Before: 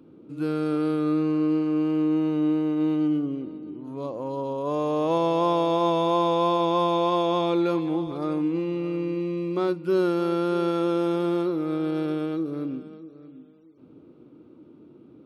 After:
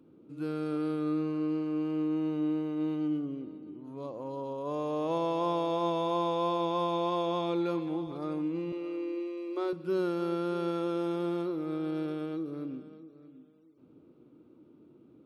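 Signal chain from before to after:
0:08.72–0:09.73: Butterworth high-pass 250 Hz 72 dB per octave
on a send: convolution reverb RT60 0.80 s, pre-delay 100 ms, DRR 19 dB
on the sum: level −7.5 dB

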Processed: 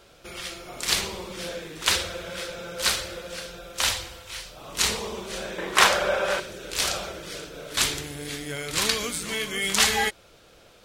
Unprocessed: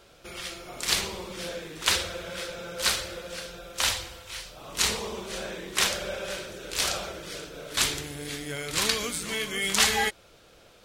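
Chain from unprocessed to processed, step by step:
0:05.58–0:06.40: parametric band 1,000 Hz +13 dB 2.2 octaves
level +1.5 dB

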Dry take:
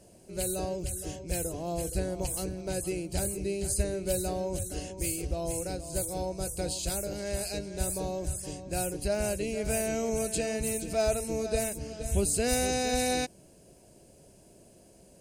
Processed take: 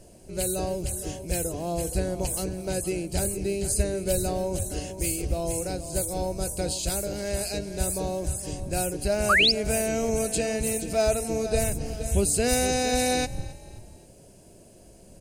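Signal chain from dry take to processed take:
wind on the microphone 85 Hz −46 dBFS
echo with shifted repeats 267 ms, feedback 41%, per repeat +37 Hz, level −20.5 dB
sound drawn into the spectrogram rise, 0:09.29–0:09.52, 1,100–5,500 Hz −23 dBFS
level +4 dB

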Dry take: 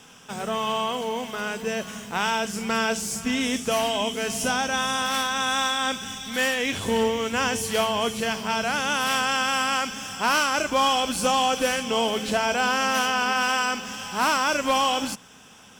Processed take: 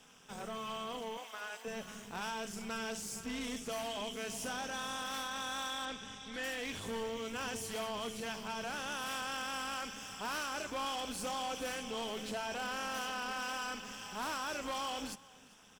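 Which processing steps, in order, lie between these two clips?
0:01.17–0:01.65: inverse Chebyshev high-pass filter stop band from 170 Hz, stop band 60 dB
amplitude modulation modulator 220 Hz, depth 60%
soft clipping −25.5 dBFS, distortion −9 dB
0:05.85–0:06.44: high-frequency loss of the air 65 metres
single-tap delay 398 ms −22.5 dB
level −8 dB

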